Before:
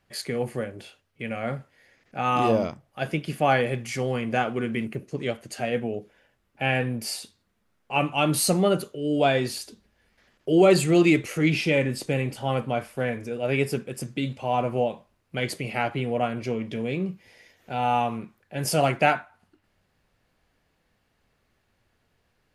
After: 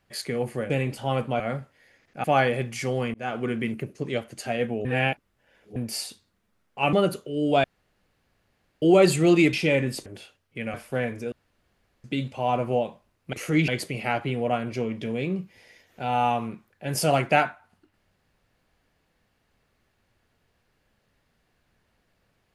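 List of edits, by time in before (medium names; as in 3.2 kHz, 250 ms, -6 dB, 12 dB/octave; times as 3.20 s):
0.70–1.38 s: swap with 12.09–12.79 s
2.22–3.37 s: delete
4.27–4.54 s: fade in
5.98–6.89 s: reverse
8.06–8.61 s: delete
9.32–10.50 s: room tone
11.21–11.56 s: move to 15.38 s
13.37–14.09 s: room tone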